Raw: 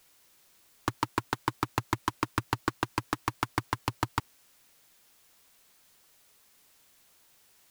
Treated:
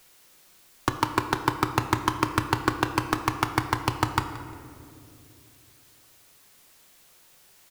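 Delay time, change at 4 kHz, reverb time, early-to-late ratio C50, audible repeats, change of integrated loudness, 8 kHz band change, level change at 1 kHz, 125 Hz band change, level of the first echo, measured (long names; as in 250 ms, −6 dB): 176 ms, +6.0 dB, 2.7 s, 8.5 dB, 1, +6.5 dB, +6.0 dB, +6.5 dB, +6.5 dB, −19.0 dB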